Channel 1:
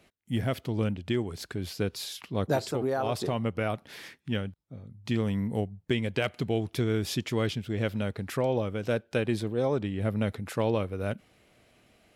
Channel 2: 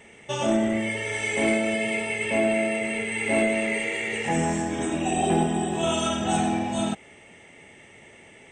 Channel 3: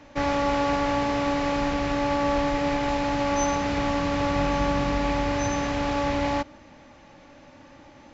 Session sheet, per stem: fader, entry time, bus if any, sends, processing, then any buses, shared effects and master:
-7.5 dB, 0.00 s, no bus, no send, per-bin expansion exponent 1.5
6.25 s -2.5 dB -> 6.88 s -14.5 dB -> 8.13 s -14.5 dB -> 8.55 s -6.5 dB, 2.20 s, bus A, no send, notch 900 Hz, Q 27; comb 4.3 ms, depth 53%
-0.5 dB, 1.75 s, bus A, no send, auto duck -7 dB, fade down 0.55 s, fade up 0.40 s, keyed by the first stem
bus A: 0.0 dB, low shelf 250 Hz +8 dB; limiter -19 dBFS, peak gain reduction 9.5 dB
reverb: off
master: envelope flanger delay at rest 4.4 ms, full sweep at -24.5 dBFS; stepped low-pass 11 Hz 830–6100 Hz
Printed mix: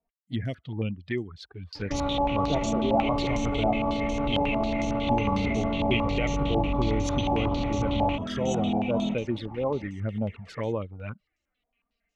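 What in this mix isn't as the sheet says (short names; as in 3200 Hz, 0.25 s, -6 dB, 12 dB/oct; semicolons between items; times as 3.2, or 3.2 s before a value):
stem 1 -7.5 dB -> +1.0 dB; stem 3 -0.5 dB -> +9.0 dB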